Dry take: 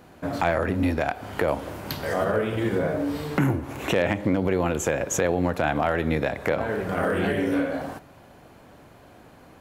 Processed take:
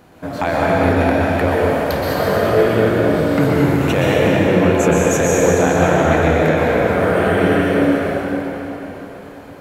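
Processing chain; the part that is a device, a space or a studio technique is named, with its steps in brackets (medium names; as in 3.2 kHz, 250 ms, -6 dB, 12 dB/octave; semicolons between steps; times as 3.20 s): cathedral (reverberation RT60 4.3 s, pre-delay 115 ms, DRR -6.5 dB); trim +2.5 dB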